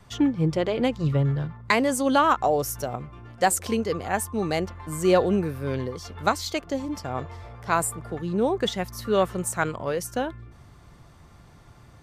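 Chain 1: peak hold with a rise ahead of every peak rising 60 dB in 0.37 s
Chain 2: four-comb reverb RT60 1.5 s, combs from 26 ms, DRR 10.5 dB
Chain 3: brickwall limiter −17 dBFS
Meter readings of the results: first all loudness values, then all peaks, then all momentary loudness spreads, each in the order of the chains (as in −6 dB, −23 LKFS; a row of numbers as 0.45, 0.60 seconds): −24.5, −25.0, −28.5 LKFS; −5.0, −6.5, −17.0 dBFS; 11, 11, 9 LU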